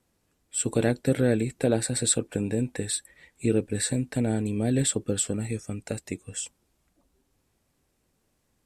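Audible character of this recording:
background noise floor −73 dBFS
spectral slope −4.5 dB per octave

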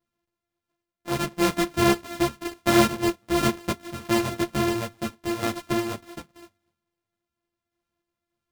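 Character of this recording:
a buzz of ramps at a fixed pitch in blocks of 128 samples
sample-and-hold tremolo
a shimmering, thickened sound

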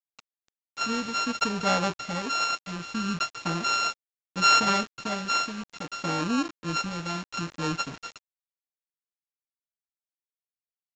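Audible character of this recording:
a buzz of ramps at a fixed pitch in blocks of 32 samples
tremolo triangle 0.68 Hz, depth 60%
a quantiser's noise floor 8 bits, dither none
mu-law

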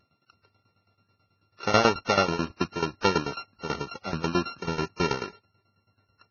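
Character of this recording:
a buzz of ramps at a fixed pitch in blocks of 32 samples
tremolo saw down 9.2 Hz, depth 90%
Ogg Vorbis

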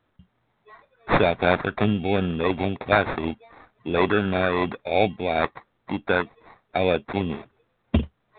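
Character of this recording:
aliases and images of a low sample rate 3,000 Hz, jitter 0%
tremolo triangle 2.8 Hz, depth 35%
mu-law

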